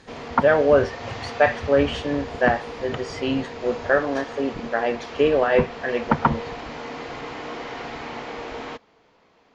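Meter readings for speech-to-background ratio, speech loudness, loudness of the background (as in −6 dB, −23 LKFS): 12.0 dB, −22.5 LKFS, −34.5 LKFS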